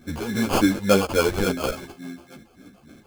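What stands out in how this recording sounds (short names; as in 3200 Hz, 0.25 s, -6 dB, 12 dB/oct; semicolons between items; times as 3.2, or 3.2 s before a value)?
phasing stages 2, 3.5 Hz, lowest notch 200–2800 Hz; aliases and images of a low sample rate 1900 Hz, jitter 0%; a shimmering, thickened sound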